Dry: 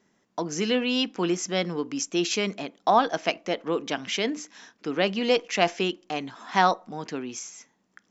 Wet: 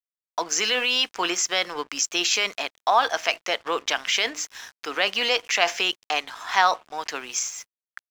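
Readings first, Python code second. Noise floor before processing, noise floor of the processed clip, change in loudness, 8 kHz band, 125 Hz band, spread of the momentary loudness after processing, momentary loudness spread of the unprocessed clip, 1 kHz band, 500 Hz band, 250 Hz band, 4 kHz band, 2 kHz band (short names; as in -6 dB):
-69 dBFS, under -85 dBFS, +3.0 dB, n/a, under -15 dB, 11 LU, 12 LU, +2.0 dB, -3.0 dB, -10.5 dB, +7.0 dB, +6.5 dB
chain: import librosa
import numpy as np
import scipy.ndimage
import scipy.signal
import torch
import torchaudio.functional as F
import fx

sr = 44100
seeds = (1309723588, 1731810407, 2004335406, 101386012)

p1 = scipy.signal.sosfilt(scipy.signal.butter(2, 890.0, 'highpass', fs=sr, output='sos'), x)
p2 = fx.over_compress(p1, sr, threshold_db=-34.0, ratio=-1.0)
p3 = p1 + F.gain(torch.from_numpy(p2), -1.5).numpy()
p4 = np.sign(p3) * np.maximum(np.abs(p3) - 10.0 ** (-48.5 / 20.0), 0.0)
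y = F.gain(torch.from_numpy(p4), 4.0).numpy()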